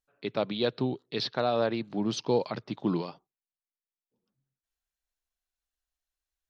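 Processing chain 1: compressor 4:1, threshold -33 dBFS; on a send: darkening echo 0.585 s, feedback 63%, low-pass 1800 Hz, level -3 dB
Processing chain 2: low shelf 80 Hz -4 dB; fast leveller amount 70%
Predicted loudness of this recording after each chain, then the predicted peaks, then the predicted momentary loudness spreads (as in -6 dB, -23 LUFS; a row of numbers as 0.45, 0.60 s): -37.5, -26.5 LUFS; -18.5, -10.0 dBFS; 19, 19 LU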